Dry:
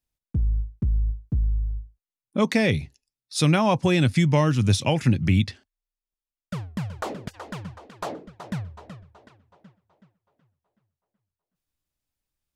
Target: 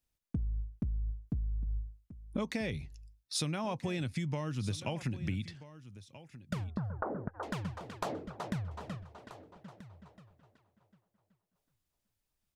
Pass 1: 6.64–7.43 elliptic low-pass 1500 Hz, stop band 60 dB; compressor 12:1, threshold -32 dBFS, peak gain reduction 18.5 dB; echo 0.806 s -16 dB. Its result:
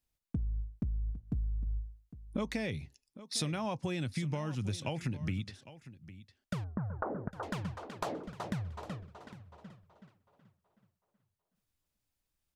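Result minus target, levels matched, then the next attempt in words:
echo 0.477 s early
6.64–7.43 elliptic low-pass 1500 Hz, stop band 60 dB; compressor 12:1, threshold -32 dBFS, peak gain reduction 18.5 dB; echo 1.283 s -16 dB

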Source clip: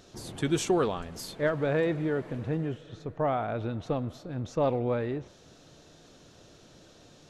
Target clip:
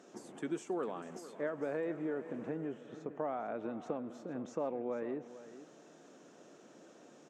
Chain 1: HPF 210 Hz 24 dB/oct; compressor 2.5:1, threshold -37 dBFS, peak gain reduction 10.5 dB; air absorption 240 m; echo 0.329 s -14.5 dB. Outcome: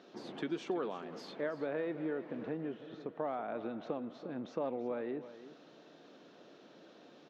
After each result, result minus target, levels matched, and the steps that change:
8000 Hz band -8.0 dB; echo 0.121 s early
add after HPF: resonant high shelf 5800 Hz +13 dB, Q 3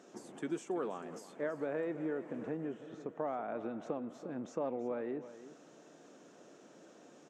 echo 0.121 s early
change: echo 0.45 s -14.5 dB

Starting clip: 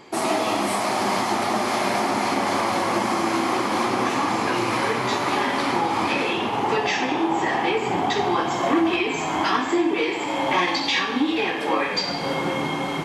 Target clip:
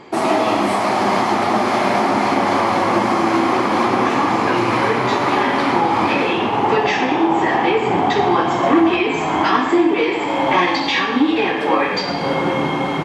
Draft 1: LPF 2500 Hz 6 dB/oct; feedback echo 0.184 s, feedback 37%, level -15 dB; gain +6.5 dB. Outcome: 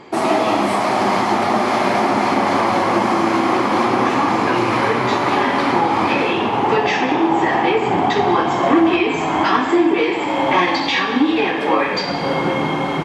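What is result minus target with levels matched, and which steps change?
echo 67 ms late
change: feedback echo 0.117 s, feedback 37%, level -15 dB

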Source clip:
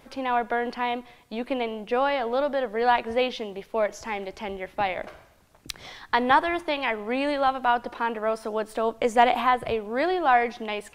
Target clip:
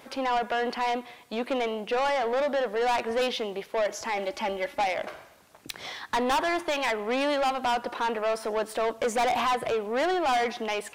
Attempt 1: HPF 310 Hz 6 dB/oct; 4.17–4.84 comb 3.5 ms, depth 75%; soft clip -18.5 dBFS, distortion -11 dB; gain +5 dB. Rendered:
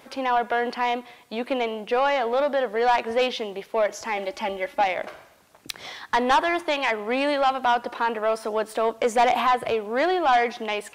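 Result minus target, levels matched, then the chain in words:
soft clip: distortion -6 dB
HPF 310 Hz 6 dB/oct; 4.17–4.84 comb 3.5 ms, depth 75%; soft clip -27 dBFS, distortion -6 dB; gain +5 dB

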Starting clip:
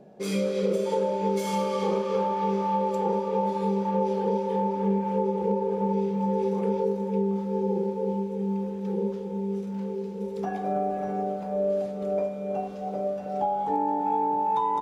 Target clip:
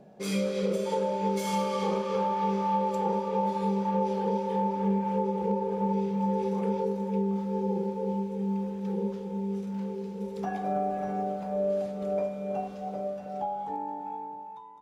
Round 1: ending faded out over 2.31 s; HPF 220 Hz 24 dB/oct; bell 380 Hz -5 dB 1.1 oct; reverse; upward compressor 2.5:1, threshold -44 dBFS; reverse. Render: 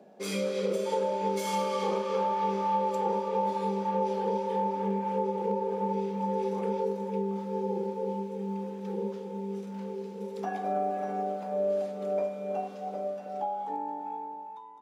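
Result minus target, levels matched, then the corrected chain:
250 Hz band -3.5 dB
ending faded out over 2.31 s; bell 380 Hz -5 dB 1.1 oct; reverse; upward compressor 2.5:1, threshold -44 dBFS; reverse

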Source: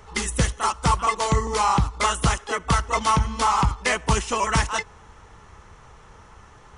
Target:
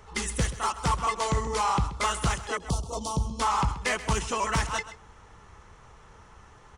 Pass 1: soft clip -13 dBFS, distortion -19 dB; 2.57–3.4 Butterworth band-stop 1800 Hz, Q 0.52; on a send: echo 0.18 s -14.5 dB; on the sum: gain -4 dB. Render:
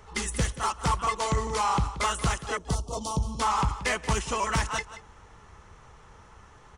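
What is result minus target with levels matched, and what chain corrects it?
echo 49 ms late
soft clip -13 dBFS, distortion -19 dB; 2.57–3.4 Butterworth band-stop 1800 Hz, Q 0.52; on a send: echo 0.131 s -14.5 dB; on the sum: gain -4 dB

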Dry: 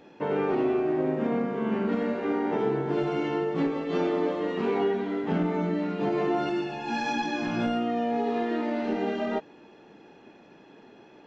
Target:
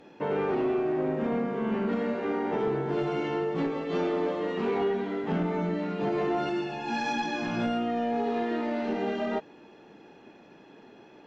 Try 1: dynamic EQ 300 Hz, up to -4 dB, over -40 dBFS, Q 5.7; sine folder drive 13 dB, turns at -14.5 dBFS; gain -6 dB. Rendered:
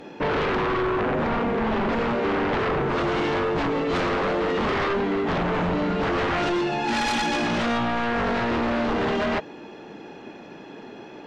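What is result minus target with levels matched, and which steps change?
sine folder: distortion +24 dB
change: sine folder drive 2 dB, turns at -14.5 dBFS

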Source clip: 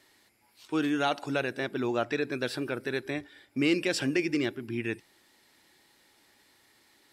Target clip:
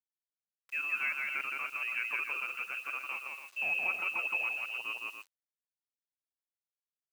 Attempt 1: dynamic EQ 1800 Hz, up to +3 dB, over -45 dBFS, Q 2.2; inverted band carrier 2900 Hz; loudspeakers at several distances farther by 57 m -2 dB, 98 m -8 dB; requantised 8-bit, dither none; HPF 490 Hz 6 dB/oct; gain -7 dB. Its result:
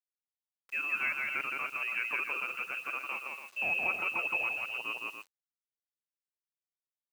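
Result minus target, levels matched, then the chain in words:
500 Hz band +4.5 dB
dynamic EQ 1800 Hz, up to +3 dB, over -45 dBFS, Q 2.2; inverted band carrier 2900 Hz; loudspeakers at several distances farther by 57 m -2 dB, 98 m -8 dB; requantised 8-bit, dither none; HPF 1300 Hz 6 dB/oct; gain -7 dB

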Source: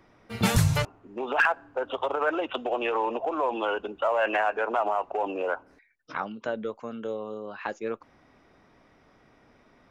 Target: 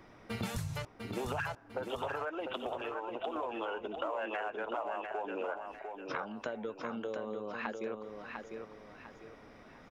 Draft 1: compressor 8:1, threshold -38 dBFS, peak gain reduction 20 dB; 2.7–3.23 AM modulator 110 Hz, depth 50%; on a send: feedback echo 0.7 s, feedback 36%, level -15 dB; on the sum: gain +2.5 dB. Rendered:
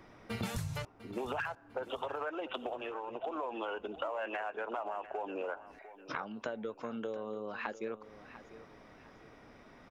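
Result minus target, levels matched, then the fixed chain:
echo-to-direct -9.5 dB
compressor 8:1, threshold -38 dBFS, peak gain reduction 20 dB; 2.7–3.23 AM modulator 110 Hz, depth 50%; on a send: feedback echo 0.7 s, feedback 36%, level -5.5 dB; on the sum: gain +2.5 dB

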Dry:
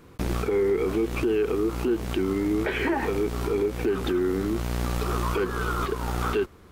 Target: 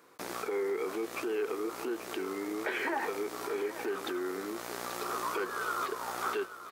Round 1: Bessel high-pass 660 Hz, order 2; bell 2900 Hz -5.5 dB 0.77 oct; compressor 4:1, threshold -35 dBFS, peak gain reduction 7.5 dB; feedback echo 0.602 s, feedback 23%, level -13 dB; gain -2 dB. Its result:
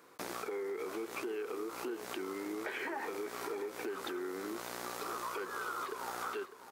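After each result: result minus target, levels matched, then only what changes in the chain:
compressor: peak gain reduction +7.5 dB; echo 0.233 s early
remove: compressor 4:1, threshold -35 dBFS, peak gain reduction 7.5 dB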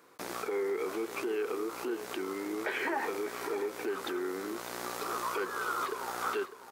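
echo 0.233 s early
change: feedback echo 0.835 s, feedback 23%, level -13 dB

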